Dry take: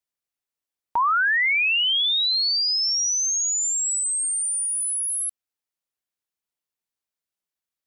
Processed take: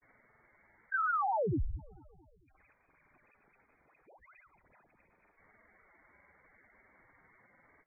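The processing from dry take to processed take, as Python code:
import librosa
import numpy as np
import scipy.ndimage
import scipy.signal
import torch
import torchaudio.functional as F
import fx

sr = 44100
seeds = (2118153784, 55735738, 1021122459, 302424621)

p1 = x + 0.5 * 10.0 ** (-44.0 / 20.0) * np.sign(x)
p2 = scipy.signal.sosfilt(scipy.signal.butter(4, 260.0, 'highpass', fs=sr, output='sos'), p1)
p3 = fx.low_shelf(p2, sr, hz=370.0, db=9.5)
p4 = fx.rider(p3, sr, range_db=10, speed_s=2.0)
p5 = p3 + (p4 * librosa.db_to_amplitude(-2.5))
p6 = fx.quant_float(p5, sr, bits=2)
p7 = 10.0 ** (-18.5 / 20.0) * np.tanh(p6 / 10.0 ** (-18.5 / 20.0))
p8 = fx.granulator(p7, sr, seeds[0], grain_ms=100.0, per_s=20.0, spray_ms=100.0, spread_st=0)
p9 = fx.echo_feedback(p8, sr, ms=223, feedback_pct=51, wet_db=-20.5)
p10 = fx.freq_invert(p9, sr, carrier_hz=2500)
p11 = fx.spec_gate(p10, sr, threshold_db=-10, keep='strong')
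y = p11 * librosa.db_to_amplitude(-9.0)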